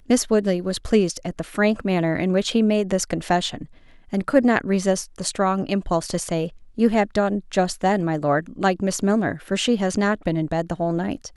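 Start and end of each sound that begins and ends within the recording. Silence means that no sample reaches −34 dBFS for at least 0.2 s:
0:04.13–0:06.49

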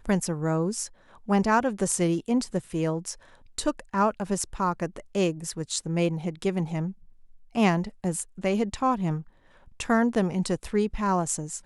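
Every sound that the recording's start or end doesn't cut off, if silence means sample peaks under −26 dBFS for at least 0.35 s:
0:01.29–0:03.11
0:03.58–0:06.88
0:07.56–0:09.18

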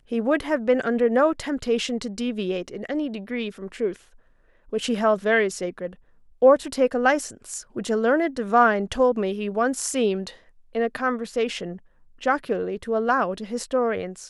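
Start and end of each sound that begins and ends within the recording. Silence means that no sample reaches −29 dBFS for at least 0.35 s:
0:04.73–0:05.87
0:06.42–0:10.28
0:10.75–0:11.73

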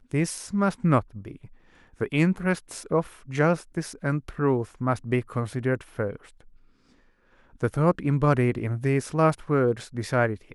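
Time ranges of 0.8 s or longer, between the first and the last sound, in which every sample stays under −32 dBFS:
0:06.16–0:07.63

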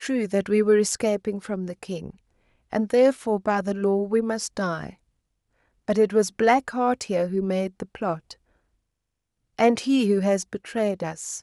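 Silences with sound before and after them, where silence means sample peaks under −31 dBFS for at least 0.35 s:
0:02.10–0:02.73
0:04.90–0:05.88
0:08.32–0:09.59

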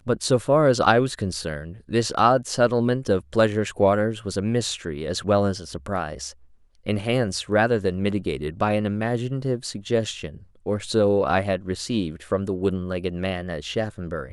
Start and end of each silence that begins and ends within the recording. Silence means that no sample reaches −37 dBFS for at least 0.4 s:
0:06.32–0:06.86

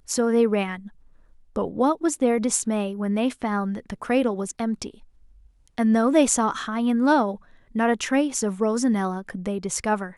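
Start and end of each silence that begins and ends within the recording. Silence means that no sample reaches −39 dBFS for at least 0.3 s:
0:00.88–0:01.56
0:04.94–0:05.67
0:07.36–0:07.75

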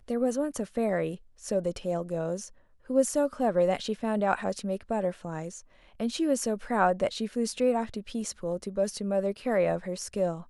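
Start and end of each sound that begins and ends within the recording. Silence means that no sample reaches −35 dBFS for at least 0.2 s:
0:01.45–0:02.46
0:02.90–0:05.57

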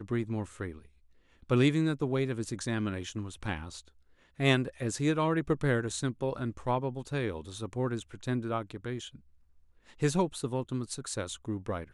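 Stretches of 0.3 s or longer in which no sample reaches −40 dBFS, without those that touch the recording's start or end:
0:00.79–0:01.50
0:03.80–0:04.39
0:09.15–0:10.02

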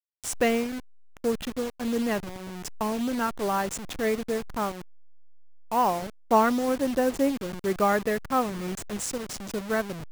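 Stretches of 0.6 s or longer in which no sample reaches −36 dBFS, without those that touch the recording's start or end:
0:04.82–0:05.72

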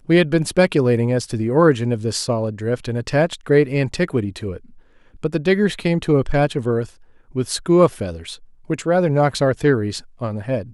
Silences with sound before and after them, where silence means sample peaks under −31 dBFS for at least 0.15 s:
0:04.57–0:05.23
0:06.85–0:07.35
0:08.35–0:08.70
0:10.00–0:10.21

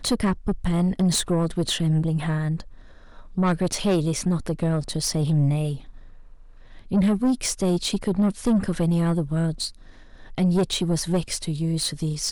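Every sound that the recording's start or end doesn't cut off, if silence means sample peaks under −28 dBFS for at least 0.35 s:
0:03.37–0:05.75
0:06.92–0:09.68

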